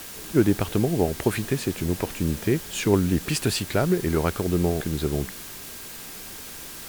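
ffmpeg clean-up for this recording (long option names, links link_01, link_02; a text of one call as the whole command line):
ffmpeg -i in.wav -af "bandreject=frequency=1600:width=30,afftdn=noise_reduction=30:noise_floor=-39" out.wav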